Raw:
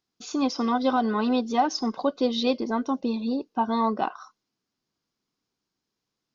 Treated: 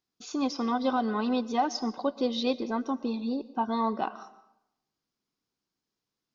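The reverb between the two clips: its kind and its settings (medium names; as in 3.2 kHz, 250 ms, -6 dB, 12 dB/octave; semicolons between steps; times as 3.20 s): algorithmic reverb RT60 0.83 s, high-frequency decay 0.7×, pre-delay 85 ms, DRR 17 dB; trim -4 dB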